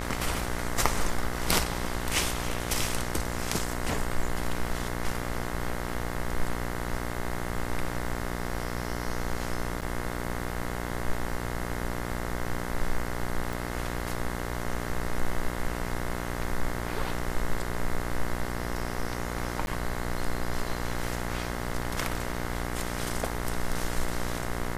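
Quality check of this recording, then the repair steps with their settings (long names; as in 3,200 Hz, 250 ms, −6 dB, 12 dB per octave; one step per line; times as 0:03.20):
mains buzz 60 Hz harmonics 36 −34 dBFS
0:09.81–0:09.82: drop-out 7.5 ms
0:13.53: click
0:19.66–0:19.67: drop-out 11 ms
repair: click removal
hum removal 60 Hz, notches 36
repair the gap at 0:09.81, 7.5 ms
repair the gap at 0:19.66, 11 ms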